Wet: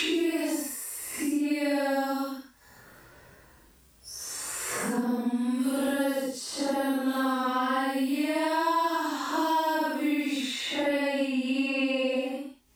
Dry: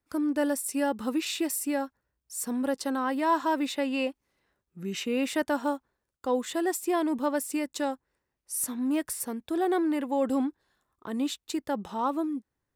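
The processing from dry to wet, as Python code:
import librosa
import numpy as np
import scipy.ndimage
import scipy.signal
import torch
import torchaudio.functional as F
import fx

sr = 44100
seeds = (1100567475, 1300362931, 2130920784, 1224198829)

y = fx.paulstretch(x, sr, seeds[0], factor=4.5, window_s=0.1, from_s=1.36)
y = fx.band_squash(y, sr, depth_pct=100)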